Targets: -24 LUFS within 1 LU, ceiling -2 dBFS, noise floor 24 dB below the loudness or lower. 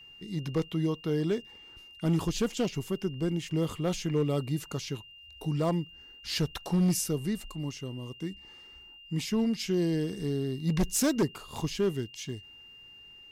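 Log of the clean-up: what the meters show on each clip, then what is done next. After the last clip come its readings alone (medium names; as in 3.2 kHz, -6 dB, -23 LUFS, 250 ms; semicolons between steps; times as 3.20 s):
clipped samples 0.8%; clipping level -20.5 dBFS; steady tone 2.8 kHz; tone level -49 dBFS; loudness -31.0 LUFS; peak level -20.5 dBFS; loudness target -24.0 LUFS
-> clip repair -20.5 dBFS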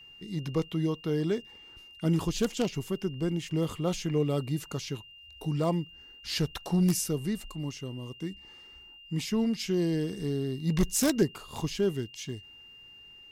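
clipped samples 0.0%; steady tone 2.8 kHz; tone level -49 dBFS
-> band-stop 2.8 kHz, Q 30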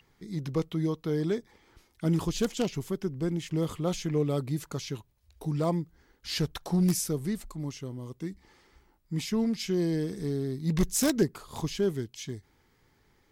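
steady tone not found; loudness -31.0 LUFS; peak level -11.5 dBFS; loudness target -24.0 LUFS
-> trim +7 dB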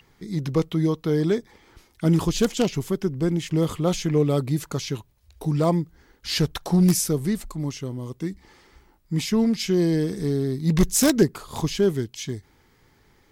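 loudness -24.0 LUFS; peak level -4.5 dBFS; noise floor -60 dBFS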